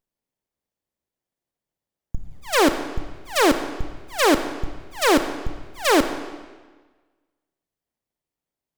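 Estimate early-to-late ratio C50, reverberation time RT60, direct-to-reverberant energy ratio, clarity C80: 10.0 dB, 1.4 s, 8.5 dB, 11.0 dB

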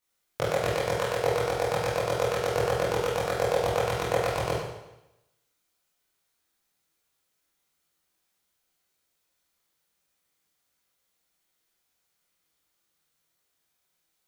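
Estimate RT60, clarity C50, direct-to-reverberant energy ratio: 0.90 s, -1.0 dB, -9.5 dB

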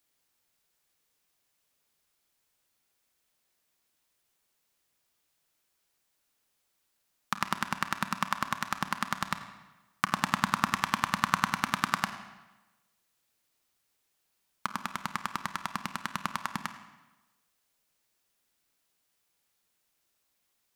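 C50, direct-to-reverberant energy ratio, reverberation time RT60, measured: 10.0 dB, 8.5 dB, 1.1 s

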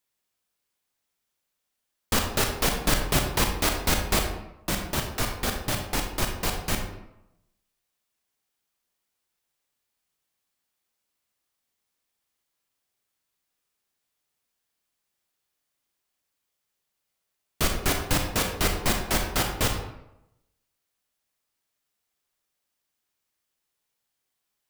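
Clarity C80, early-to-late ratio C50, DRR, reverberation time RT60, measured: 8.0 dB, 5.0 dB, 3.0 dB, 0.85 s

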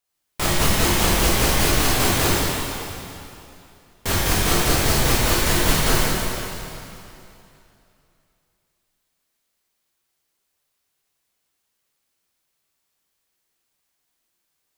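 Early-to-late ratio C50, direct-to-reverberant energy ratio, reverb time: -4.5 dB, -8.5 dB, 2.8 s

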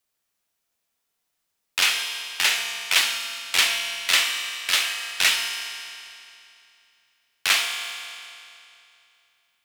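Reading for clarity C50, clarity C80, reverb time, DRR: 4.0 dB, 5.0 dB, 2.7 s, 2.5 dB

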